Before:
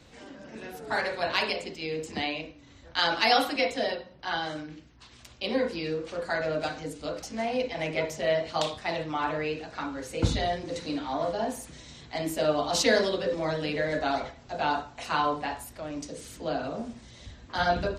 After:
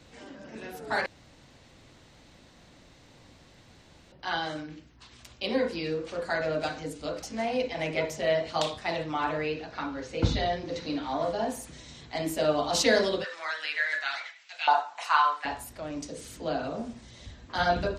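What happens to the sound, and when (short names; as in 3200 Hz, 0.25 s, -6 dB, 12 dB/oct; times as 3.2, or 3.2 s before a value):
1.06–4.12 room tone
9.46–11.03 LPF 6000 Hz 24 dB/oct
13.23–15.44 LFO high-pass saw up 0.19 Hz -> 0.95 Hz 740–2500 Hz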